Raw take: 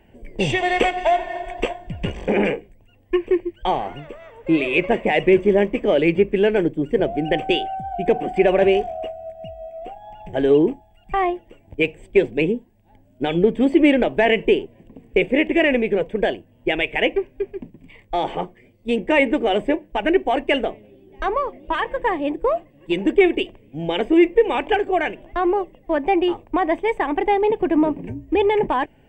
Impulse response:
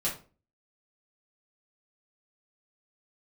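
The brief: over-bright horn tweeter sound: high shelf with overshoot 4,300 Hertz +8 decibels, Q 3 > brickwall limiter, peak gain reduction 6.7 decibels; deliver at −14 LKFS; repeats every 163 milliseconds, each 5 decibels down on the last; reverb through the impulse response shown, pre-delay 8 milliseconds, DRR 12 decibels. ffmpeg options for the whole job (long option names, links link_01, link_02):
-filter_complex "[0:a]aecho=1:1:163|326|489|652|815|978|1141:0.562|0.315|0.176|0.0988|0.0553|0.031|0.0173,asplit=2[link_01][link_02];[1:a]atrim=start_sample=2205,adelay=8[link_03];[link_02][link_03]afir=irnorm=-1:irlink=0,volume=-18dB[link_04];[link_01][link_04]amix=inputs=2:normalize=0,highshelf=frequency=4300:width_type=q:width=3:gain=8,volume=6.5dB,alimiter=limit=-2dB:level=0:latency=1"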